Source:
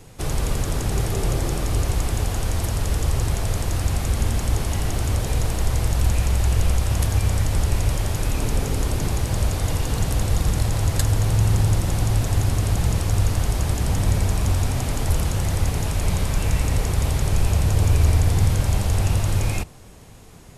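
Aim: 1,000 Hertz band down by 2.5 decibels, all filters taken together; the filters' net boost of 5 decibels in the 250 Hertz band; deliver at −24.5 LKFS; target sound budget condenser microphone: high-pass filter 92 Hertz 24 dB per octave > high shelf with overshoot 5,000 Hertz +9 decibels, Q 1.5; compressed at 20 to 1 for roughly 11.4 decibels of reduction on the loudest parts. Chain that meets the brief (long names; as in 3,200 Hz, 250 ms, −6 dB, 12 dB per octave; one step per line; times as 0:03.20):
parametric band 250 Hz +7.5 dB
parametric band 1,000 Hz −3.5 dB
downward compressor 20 to 1, threshold −24 dBFS
high-pass filter 92 Hz 24 dB per octave
high shelf with overshoot 5,000 Hz +9 dB, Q 1.5
level +5.5 dB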